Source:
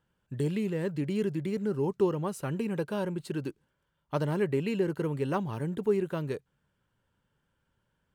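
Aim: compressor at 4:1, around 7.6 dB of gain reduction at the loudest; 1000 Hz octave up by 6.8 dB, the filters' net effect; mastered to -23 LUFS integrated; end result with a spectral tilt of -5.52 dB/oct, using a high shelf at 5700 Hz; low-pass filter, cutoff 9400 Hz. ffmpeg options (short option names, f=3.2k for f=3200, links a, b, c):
-af "lowpass=9.4k,equalizer=f=1k:t=o:g=8,highshelf=f=5.7k:g=6.5,acompressor=threshold=-29dB:ratio=4,volume=11dB"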